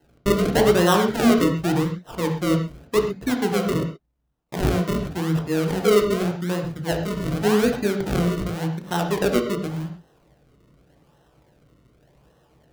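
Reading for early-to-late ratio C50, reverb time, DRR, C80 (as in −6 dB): 6.5 dB, non-exponential decay, 3.0 dB, 9.0 dB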